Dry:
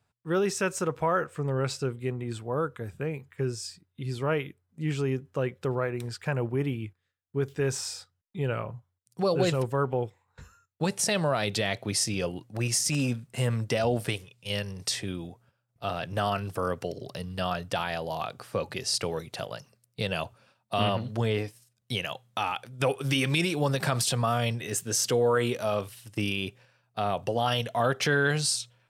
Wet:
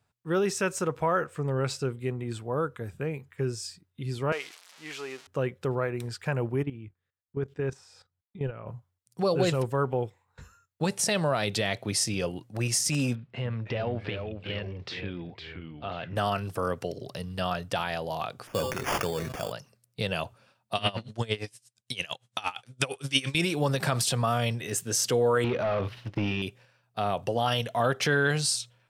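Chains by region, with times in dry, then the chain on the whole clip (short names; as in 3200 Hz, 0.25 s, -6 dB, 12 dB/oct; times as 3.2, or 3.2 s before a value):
4.32–5.27 switching spikes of -26 dBFS + BPF 640–5200 Hz
6.63–8.67 LPF 1800 Hz 6 dB/oct + level quantiser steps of 14 dB
13.15–16.16 LPF 3600 Hz 24 dB/oct + compressor 1.5:1, threshold -36 dBFS + echoes that change speed 0.297 s, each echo -2 st, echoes 2, each echo -6 dB
18.47–19.52 de-hum 128.4 Hz, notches 13 + sample-rate reducer 4000 Hz + sustainer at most 46 dB/s
20.75–23.35 LPF 10000 Hz 24 dB/oct + high shelf 2000 Hz +11 dB + dB-linear tremolo 8.7 Hz, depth 22 dB
25.44–26.42 sample leveller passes 3 + compressor, threshold -24 dBFS + air absorption 280 m
whole clip: dry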